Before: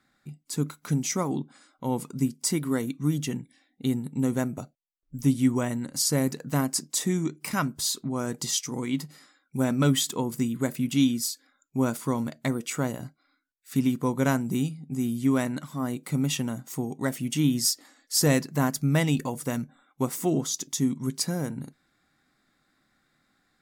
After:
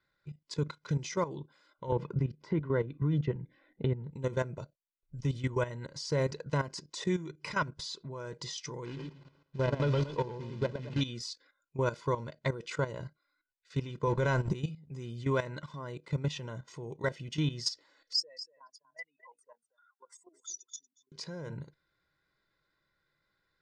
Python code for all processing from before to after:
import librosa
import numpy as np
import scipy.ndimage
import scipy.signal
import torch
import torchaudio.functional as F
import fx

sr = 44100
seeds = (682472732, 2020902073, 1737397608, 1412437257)

y = fx.chain(x, sr, fx.lowpass(hz=2000.0, slope=12),
    fx.low_shelf(hz=380.0, db=5.5),
    fx.band_squash(depth_pct=70), at=(1.92, 4.11))
y = fx.chain(y, sr, fx.median_filter(points=25),
    fx.quant_companded(bits=6),
    fx.echo_warbled(ms=113, feedback_pct=31, rate_hz=2.8, cents=129, wet_db=-3.5), at=(8.85, 11.01))
y = fx.chain(y, sr, fx.law_mismatch(coded='A'),
    fx.low_shelf(hz=62.0, db=10.0),
    fx.env_flatten(amount_pct=70), at=(14.07, 14.53))
y = fx.chain(y, sr, fx.spec_expand(power=2.9),
    fx.highpass(hz=870.0, slope=24),
    fx.echo_single(ms=236, db=-15.0), at=(18.13, 21.12))
y = scipy.signal.sosfilt(scipy.signal.butter(4, 5200.0, 'lowpass', fs=sr, output='sos'), y)
y = y + 0.82 * np.pad(y, (int(2.0 * sr / 1000.0), 0))[:len(y)]
y = fx.level_steps(y, sr, step_db=13)
y = y * 10.0 ** (-1.5 / 20.0)